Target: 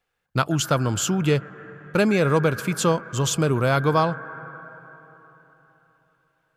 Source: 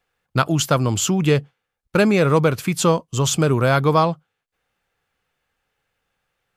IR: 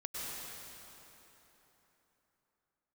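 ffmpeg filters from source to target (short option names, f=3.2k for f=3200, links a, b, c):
-filter_complex "[0:a]asplit=2[a][b];[b]lowpass=f=1.6k:t=q:w=14[c];[1:a]atrim=start_sample=2205,adelay=134[d];[c][d]afir=irnorm=-1:irlink=0,volume=-22dB[e];[a][e]amix=inputs=2:normalize=0,volume=-3.5dB"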